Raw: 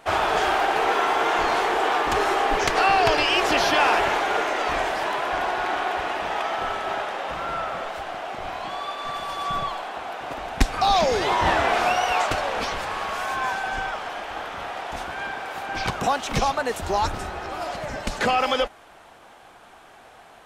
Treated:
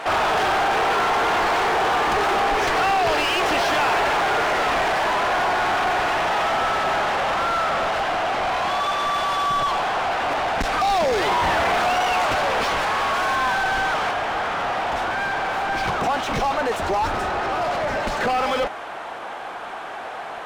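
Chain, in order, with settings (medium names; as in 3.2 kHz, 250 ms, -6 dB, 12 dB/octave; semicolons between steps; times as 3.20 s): saturation -21 dBFS, distortion -10 dB; overdrive pedal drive 22 dB, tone 2.4 kHz, clips at -21 dBFS, from 14.11 s tone 1.4 kHz; trim +5 dB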